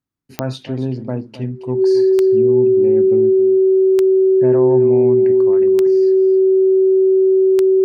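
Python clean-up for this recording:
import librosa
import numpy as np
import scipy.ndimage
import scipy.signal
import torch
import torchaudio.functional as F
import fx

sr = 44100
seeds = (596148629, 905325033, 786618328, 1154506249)

y = fx.fix_declick_ar(x, sr, threshold=10.0)
y = fx.notch(y, sr, hz=380.0, q=30.0)
y = fx.fix_echo_inverse(y, sr, delay_ms=272, level_db=-14.0)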